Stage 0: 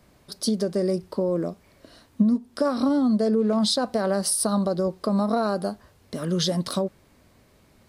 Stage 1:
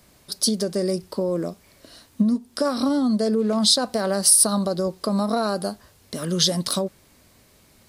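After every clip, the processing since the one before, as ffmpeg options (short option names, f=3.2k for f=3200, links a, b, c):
-af "highshelf=f=3.1k:g=10.5"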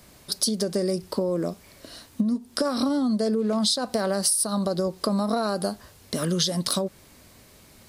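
-af "acompressor=threshold=-25dB:ratio=5,volume=3.5dB"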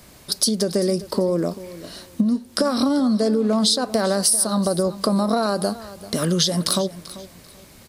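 -af "aecho=1:1:390|780|1170:0.15|0.0389|0.0101,volume=4.5dB"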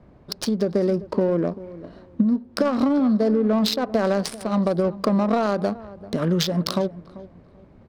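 -af "adynamicsmooth=sensitivity=1:basefreq=940"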